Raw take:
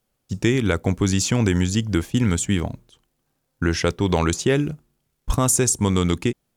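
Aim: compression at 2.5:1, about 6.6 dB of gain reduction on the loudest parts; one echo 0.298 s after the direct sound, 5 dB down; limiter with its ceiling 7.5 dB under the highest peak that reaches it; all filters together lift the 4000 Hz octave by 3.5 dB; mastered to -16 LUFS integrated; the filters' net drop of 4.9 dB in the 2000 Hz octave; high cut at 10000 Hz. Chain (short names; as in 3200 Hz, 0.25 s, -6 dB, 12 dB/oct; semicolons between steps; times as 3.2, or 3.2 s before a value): LPF 10000 Hz; bell 2000 Hz -8.5 dB; bell 4000 Hz +7.5 dB; compressor 2.5:1, threshold -25 dBFS; limiter -20.5 dBFS; echo 0.298 s -5 dB; gain +14 dB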